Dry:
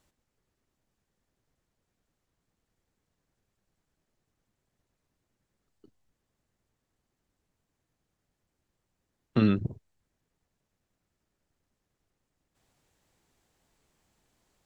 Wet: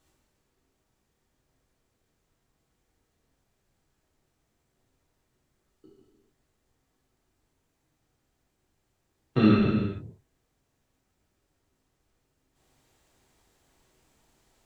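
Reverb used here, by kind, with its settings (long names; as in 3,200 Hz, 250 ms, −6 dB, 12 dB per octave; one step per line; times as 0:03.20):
reverb whose tail is shaped and stops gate 480 ms falling, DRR −6 dB
level −1 dB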